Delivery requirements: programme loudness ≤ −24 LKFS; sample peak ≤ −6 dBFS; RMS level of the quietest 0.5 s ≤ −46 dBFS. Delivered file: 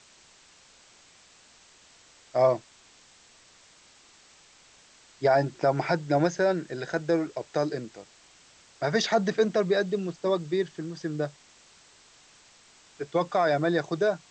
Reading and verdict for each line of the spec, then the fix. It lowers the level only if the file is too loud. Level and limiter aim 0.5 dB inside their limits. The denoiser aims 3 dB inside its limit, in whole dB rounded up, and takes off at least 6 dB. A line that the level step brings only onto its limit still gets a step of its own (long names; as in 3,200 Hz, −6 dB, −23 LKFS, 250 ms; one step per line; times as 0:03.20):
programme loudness −27.0 LKFS: in spec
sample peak −11.0 dBFS: in spec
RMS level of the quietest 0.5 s −57 dBFS: in spec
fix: no processing needed